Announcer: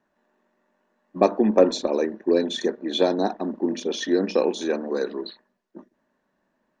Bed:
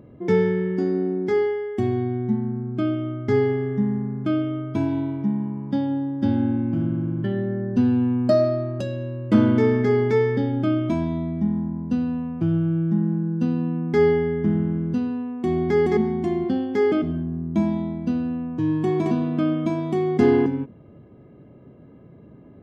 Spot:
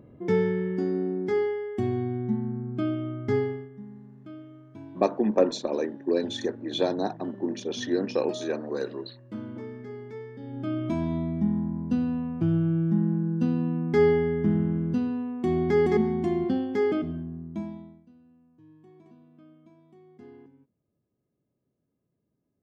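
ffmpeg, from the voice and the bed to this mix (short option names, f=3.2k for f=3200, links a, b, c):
-filter_complex "[0:a]adelay=3800,volume=-5dB[a];[1:a]volume=13.5dB,afade=t=out:st=3.31:d=0.38:silence=0.158489,afade=t=in:st=10.38:d=0.77:silence=0.125893,afade=t=out:st=16.45:d=1.61:silence=0.0334965[b];[a][b]amix=inputs=2:normalize=0"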